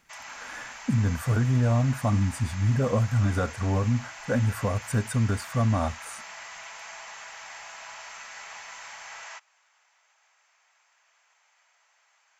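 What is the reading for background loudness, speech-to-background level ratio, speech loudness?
-41.0 LUFS, 15.0 dB, -26.0 LUFS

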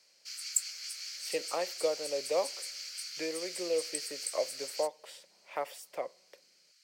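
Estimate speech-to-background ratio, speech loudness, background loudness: 1.5 dB, -36.5 LUFS, -38.0 LUFS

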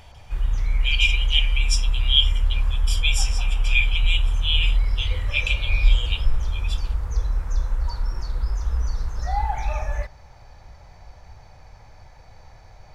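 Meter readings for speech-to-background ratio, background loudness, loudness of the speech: 2.5 dB, -26.5 LUFS, -24.0 LUFS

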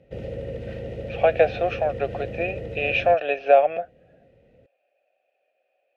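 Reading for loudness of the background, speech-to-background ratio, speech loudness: -34.5 LUFS, 12.0 dB, -22.5 LUFS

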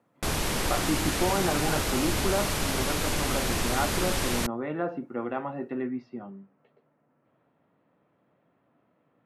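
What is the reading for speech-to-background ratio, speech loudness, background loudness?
-4.0 dB, -32.0 LUFS, -28.0 LUFS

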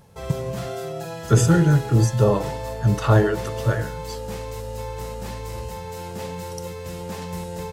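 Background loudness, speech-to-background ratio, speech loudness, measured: -32.0 LUFS, 11.5 dB, -20.5 LUFS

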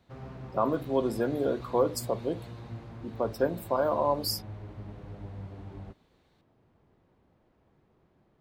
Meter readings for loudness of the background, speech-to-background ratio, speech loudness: -44.0 LUFS, 14.0 dB, -30.0 LUFS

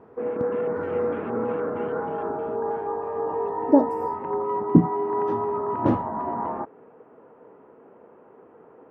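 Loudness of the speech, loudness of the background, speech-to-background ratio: -24.0 LUFS, -27.5 LUFS, 3.5 dB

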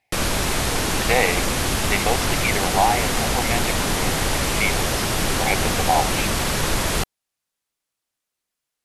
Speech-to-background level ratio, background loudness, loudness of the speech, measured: -3.5 dB, -21.5 LUFS, -25.0 LUFS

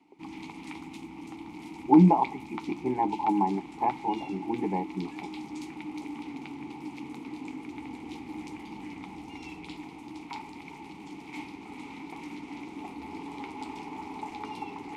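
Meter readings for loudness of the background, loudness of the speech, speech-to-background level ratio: -41.0 LUFS, -26.5 LUFS, 14.5 dB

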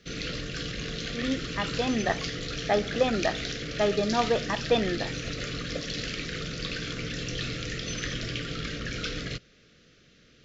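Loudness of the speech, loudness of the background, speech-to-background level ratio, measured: -29.0 LUFS, -33.0 LUFS, 4.0 dB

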